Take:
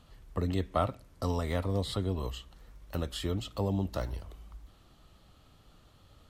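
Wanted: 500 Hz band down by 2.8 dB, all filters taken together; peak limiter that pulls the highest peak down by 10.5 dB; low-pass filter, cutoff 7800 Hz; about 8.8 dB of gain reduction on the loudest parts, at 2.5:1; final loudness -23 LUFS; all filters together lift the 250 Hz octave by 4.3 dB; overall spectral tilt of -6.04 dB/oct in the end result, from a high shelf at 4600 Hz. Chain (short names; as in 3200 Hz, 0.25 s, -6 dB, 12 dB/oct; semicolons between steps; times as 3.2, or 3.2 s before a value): LPF 7800 Hz; bell 250 Hz +7 dB; bell 500 Hz -5.5 dB; high shelf 4600 Hz -6 dB; compressor 2.5:1, threshold -38 dBFS; gain +21 dB; limiter -11.5 dBFS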